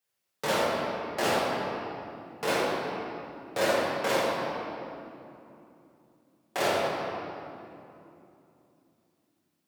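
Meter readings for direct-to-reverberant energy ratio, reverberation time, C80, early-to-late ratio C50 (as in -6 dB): -7.5 dB, 2.9 s, -0.5 dB, -1.5 dB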